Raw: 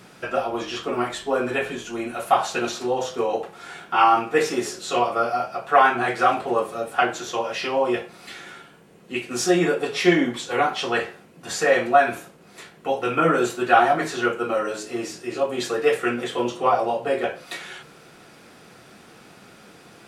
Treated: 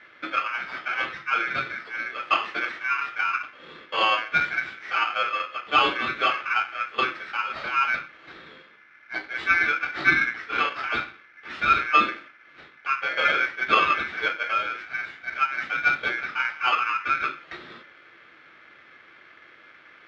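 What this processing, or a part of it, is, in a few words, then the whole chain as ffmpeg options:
ring modulator pedal into a guitar cabinet: -af "aeval=exprs='val(0)*sgn(sin(2*PI*1900*n/s))':channel_layout=same,highpass=89,equalizer=frequency=330:width_type=q:width=4:gain=9,equalizer=frequency=1300:width_type=q:width=4:gain=9,equalizer=frequency=1900:width_type=q:width=4:gain=10,lowpass=frequency=3600:width=0.5412,lowpass=frequency=3600:width=1.3066,volume=-7dB"

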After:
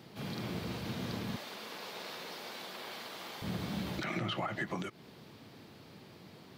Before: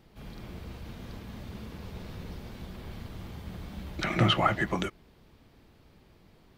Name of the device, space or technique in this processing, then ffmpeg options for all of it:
broadcast voice chain: -filter_complex "[0:a]highpass=frequency=110:width=0.5412,highpass=frequency=110:width=1.3066,deesser=0.7,acompressor=threshold=-37dB:ratio=4,equalizer=frequency=4400:width_type=o:width=0.82:gain=4,alimiter=level_in=8dB:limit=-24dB:level=0:latency=1:release=127,volume=-8dB,asettb=1/sr,asplit=3[link_01][link_02][link_03];[link_01]atrim=end=1.364[link_04];[link_02]atrim=start=1.36:end=3.42,asetpts=PTS-STARTPTS,afade=type=in:duration=0.004:curve=qsin,afade=type=out:start_time=2.056:duration=0.004:curve=qsin,highpass=570[link_05];[link_03]atrim=start=3.416[link_06];[link_04][link_05]acrossfade=duration=0.004:curve1=hsin:curve2=qsin[link_07];[link_07][link_06]acrossfade=duration=0.004:curve1=qsin:curve2=hsin,volume=6.5dB"

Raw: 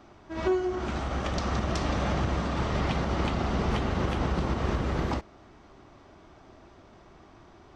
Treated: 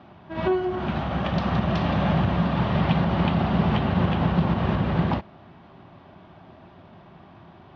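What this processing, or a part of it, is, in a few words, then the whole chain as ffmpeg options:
guitar cabinet: -af "highpass=100,equalizer=frequency=100:width_type=q:width=4:gain=4,equalizer=frequency=170:width_type=q:width=4:gain=8,equalizer=frequency=310:width_type=q:width=4:gain=-6,equalizer=frequency=450:width_type=q:width=4:gain=-7,equalizer=frequency=1300:width_type=q:width=4:gain=-5,equalizer=frequency=2100:width_type=q:width=4:gain=-5,lowpass=frequency=3500:width=0.5412,lowpass=frequency=3500:width=1.3066,volume=6.5dB"

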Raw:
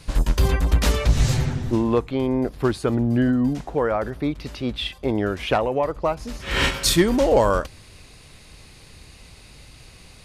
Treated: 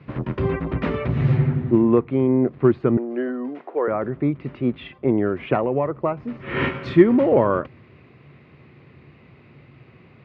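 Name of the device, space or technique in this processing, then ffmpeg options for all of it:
bass cabinet: -filter_complex "[0:a]highpass=frequency=88:width=0.5412,highpass=frequency=88:width=1.3066,equalizer=frequency=140:width_type=q:width=4:gain=9,equalizer=frequency=240:width_type=q:width=4:gain=6,equalizer=frequency=360:width_type=q:width=4:gain=8,equalizer=frequency=840:width_type=q:width=4:gain=-4,equalizer=frequency=1600:width_type=q:width=4:gain=-6,lowpass=frequency=2000:width=0.5412,lowpass=frequency=2000:width=1.3066,asettb=1/sr,asplit=3[link_01][link_02][link_03];[link_01]atrim=end=2.974[link_04];[link_02]atrim=start=2.97:end=3.88,asetpts=PTS-STARTPTS,afade=type=in:duration=0.004:curve=qsin,afade=type=out:start_time=0.906:duration=0.004:curve=qsin,highpass=frequency=370:width=0.5412,highpass=frequency=370:width=1.3066[link_05];[link_03]atrim=start=3.876[link_06];[link_04][link_05]acrossfade=duration=0.004:curve1=hsin:curve2=qsin[link_07];[link_07][link_06]acrossfade=duration=0.004:curve1=qsin:curve2=hsin,tiltshelf=frequency=1400:gain=-3.5,volume=1.5dB"

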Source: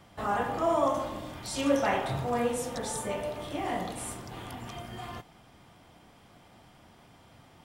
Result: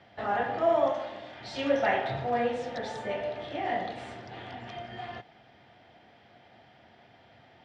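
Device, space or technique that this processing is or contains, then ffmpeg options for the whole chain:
guitar cabinet: -filter_complex "[0:a]asettb=1/sr,asplit=3[link_01][link_02][link_03];[link_01]atrim=end=0.924[link_04];[link_02]atrim=start=0.92:end=1.41,asetpts=PTS-STARTPTS,afade=type=in:duration=0.004:curve=qsin,afade=type=out:start_time=0.486:duration=0.004:curve=qsin,lowshelf=frequency=350:gain=-9.5[link_05];[link_03]atrim=start=1.406[link_06];[link_04][link_05]acrossfade=duration=0.004:curve1=hsin:curve2=qsin[link_07];[link_07][link_06]acrossfade=duration=0.004:curve1=qsin:curve2=hsin,highpass=110,equalizer=frequency=170:width_type=q:width=4:gain=-8,equalizer=frequency=290:width_type=q:width=4:gain=-4,equalizer=frequency=700:width_type=q:width=4:gain=5,equalizer=frequency=1100:width_type=q:width=4:gain=-9,equalizer=frequency=1800:width_type=q:width=4:gain=6,lowpass=frequency=4500:width=0.5412,lowpass=frequency=4500:width=1.3066"

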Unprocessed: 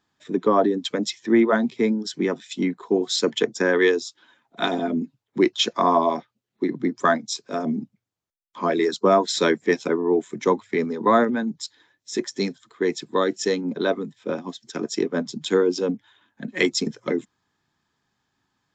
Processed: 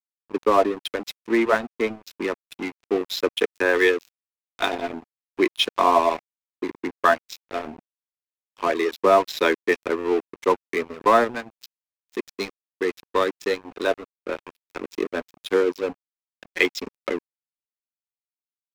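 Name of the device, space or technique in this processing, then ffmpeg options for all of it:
pocket radio on a weak battery: -af "highpass=380,lowpass=4000,aeval=exprs='sgn(val(0))*max(abs(val(0))-0.0224,0)':channel_layout=same,equalizer=frequency=2500:width_type=o:width=0.28:gain=5,volume=3dB"

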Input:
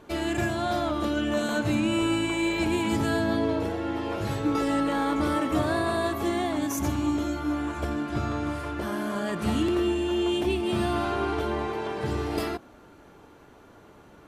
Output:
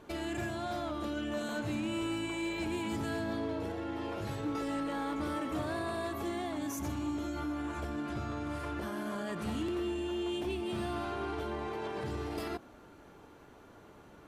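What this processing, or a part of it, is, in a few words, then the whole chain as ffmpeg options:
clipper into limiter: -af "asoftclip=type=hard:threshold=-20dB,alimiter=level_in=2dB:limit=-24dB:level=0:latency=1:release=76,volume=-2dB,volume=-3.5dB"

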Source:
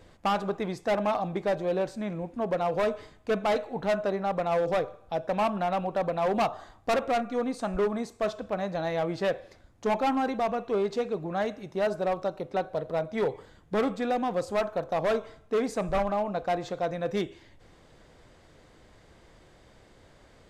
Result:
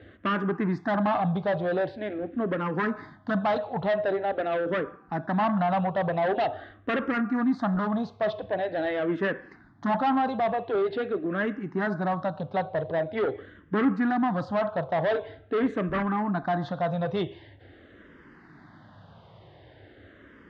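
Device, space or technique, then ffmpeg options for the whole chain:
barber-pole phaser into a guitar amplifier: -filter_complex "[0:a]asplit=2[link_01][link_02];[link_02]afreqshift=-0.45[link_03];[link_01][link_03]amix=inputs=2:normalize=1,asoftclip=type=tanh:threshold=-28dB,highpass=91,equalizer=frequency=100:width_type=q:width=4:gain=7,equalizer=frequency=170:width_type=q:width=4:gain=3,equalizer=frequency=280:width_type=q:width=4:gain=4,equalizer=frequency=490:width_type=q:width=4:gain=-5,equalizer=frequency=1700:width_type=q:width=4:gain=5,equalizer=frequency=2400:width_type=q:width=4:gain=-8,lowpass=frequency=3500:width=0.5412,lowpass=frequency=3500:width=1.3066,volume=8dB"

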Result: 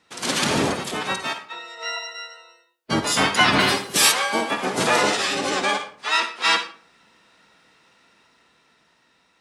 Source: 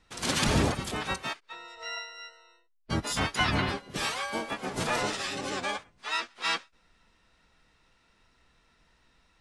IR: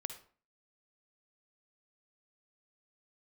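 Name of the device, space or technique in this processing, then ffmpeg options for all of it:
far laptop microphone: -filter_complex "[1:a]atrim=start_sample=2205[link_01];[0:a][link_01]afir=irnorm=-1:irlink=0,highpass=190,dynaudnorm=framelen=330:gausssize=9:maxgain=5dB,asplit=3[link_02][link_03][link_04];[link_02]afade=type=out:start_time=3.59:duration=0.02[link_05];[link_03]aemphasis=mode=production:type=75fm,afade=type=in:start_time=3.59:duration=0.02,afade=type=out:start_time=4.11:duration=0.02[link_06];[link_04]afade=type=in:start_time=4.11:duration=0.02[link_07];[link_05][link_06][link_07]amix=inputs=3:normalize=0,volume=7dB"

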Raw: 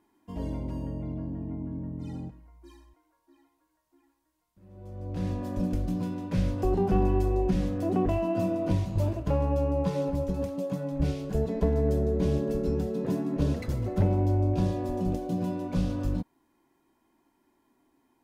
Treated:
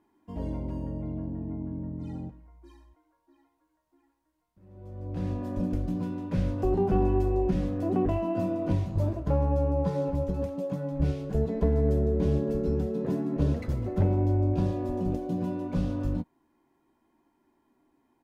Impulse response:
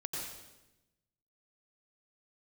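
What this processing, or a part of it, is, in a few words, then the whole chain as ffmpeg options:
behind a face mask: -filter_complex "[0:a]asettb=1/sr,asplit=3[link_01][link_02][link_03];[link_01]atrim=end=8.914[link_04];[link_02]atrim=start=8.91:end=10.05,asetpts=PTS-STARTPTS,afade=type=in:duration=0.004:curve=qsin,afade=type=out:start_time=1.136:duration=0.004:curve=qsin,equalizer=frequency=2700:width=2.7:gain=-5.5[link_05];[link_03]atrim=start=10.046[link_06];[link_04][link_05]acrossfade=duration=0.004:curve1=hsin:curve2=qsin[link_07];[link_07][link_06]acrossfade=duration=0.004:curve1=qsin:curve2=hsin,highshelf=frequency=2800:gain=-8,asplit=2[link_08][link_09];[link_09]adelay=13,volume=-12dB[link_10];[link_08][link_10]amix=inputs=2:normalize=0"

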